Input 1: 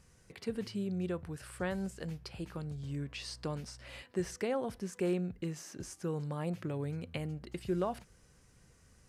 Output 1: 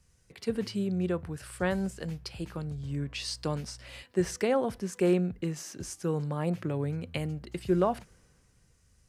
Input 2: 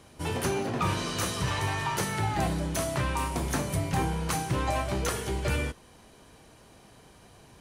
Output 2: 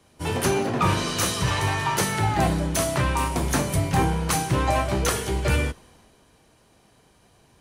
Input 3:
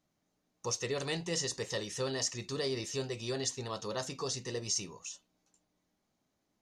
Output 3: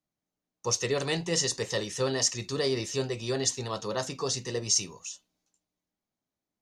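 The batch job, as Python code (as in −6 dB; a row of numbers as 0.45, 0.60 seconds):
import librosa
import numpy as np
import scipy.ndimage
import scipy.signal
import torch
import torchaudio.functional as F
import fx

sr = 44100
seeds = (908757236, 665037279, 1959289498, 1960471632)

y = fx.band_widen(x, sr, depth_pct=40)
y = y * 10.0 ** (6.0 / 20.0)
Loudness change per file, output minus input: +6.5, +6.0, +6.5 LU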